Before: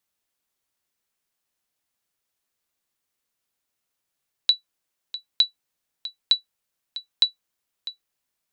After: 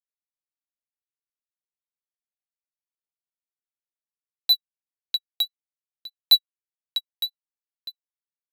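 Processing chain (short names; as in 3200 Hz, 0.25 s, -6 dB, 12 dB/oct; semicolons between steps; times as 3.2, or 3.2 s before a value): sample leveller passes 5; rotary speaker horn 5 Hz; upward expander 2.5:1, over -23 dBFS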